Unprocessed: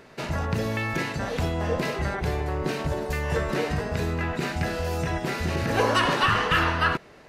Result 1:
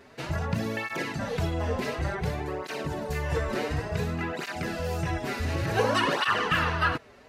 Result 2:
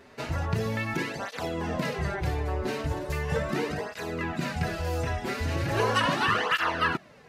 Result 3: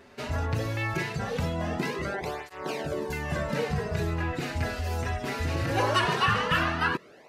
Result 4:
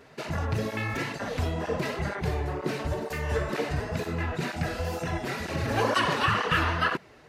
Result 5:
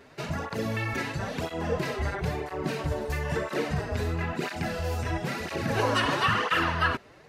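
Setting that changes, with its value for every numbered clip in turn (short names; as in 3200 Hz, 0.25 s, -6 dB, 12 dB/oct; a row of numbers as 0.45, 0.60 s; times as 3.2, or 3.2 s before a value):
tape flanging out of phase, nulls at: 0.56, 0.38, 0.2, 2.1, 1 Hz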